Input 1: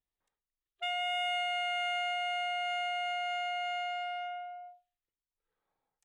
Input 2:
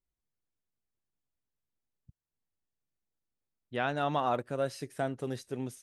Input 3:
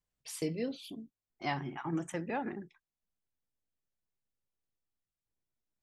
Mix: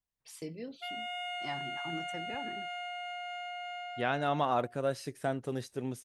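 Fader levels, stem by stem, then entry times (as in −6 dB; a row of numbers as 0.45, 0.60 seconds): −6.0, 0.0, −7.0 decibels; 0.00, 0.25, 0.00 seconds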